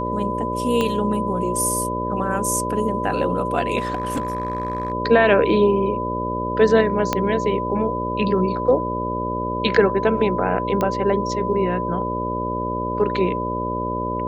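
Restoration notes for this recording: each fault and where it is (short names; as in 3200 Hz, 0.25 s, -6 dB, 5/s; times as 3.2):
buzz 60 Hz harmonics 10 -27 dBFS
tone 1000 Hz -25 dBFS
0.81 pop -9 dBFS
3.78–4.92 clipped -19 dBFS
7.13 pop -5 dBFS
10.81 pop -9 dBFS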